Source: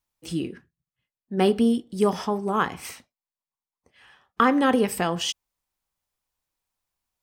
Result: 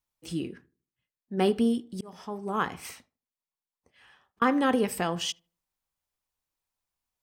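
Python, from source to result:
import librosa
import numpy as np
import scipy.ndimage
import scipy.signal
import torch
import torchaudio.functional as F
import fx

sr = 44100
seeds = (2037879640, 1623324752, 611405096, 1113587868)

y = fx.auto_swell(x, sr, attack_ms=650.0, at=(1.65, 4.42))
y = fx.echo_filtered(y, sr, ms=76, feedback_pct=36, hz=1100.0, wet_db=-22.0)
y = y * librosa.db_to_amplitude(-4.0)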